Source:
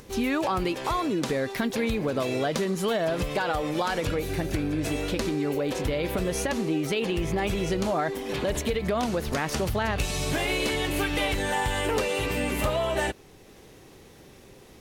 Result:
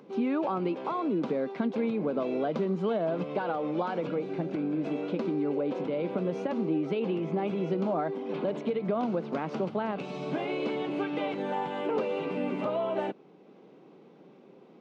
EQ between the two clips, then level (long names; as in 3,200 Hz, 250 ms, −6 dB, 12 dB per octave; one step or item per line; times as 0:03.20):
Butterworth high-pass 160 Hz 48 dB per octave
head-to-tape spacing loss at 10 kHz 43 dB
parametric band 1,800 Hz −11 dB 0.23 octaves
0.0 dB